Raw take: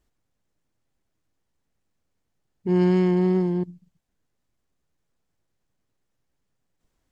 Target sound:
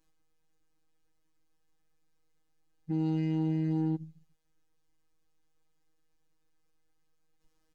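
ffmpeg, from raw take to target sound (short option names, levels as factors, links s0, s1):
-af "aecho=1:1:3.6:0.94,alimiter=limit=0.0631:level=0:latency=1:release=71,afftfilt=real='hypot(re,im)*cos(PI*b)':imag='0':win_size=1024:overlap=0.75,asetrate=40517,aresample=44100"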